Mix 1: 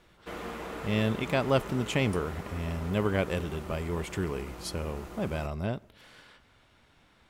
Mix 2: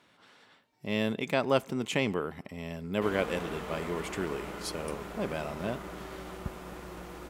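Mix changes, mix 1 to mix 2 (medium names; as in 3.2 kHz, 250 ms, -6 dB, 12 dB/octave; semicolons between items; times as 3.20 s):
speech: add high-pass 190 Hz 12 dB/octave; background: entry +2.75 s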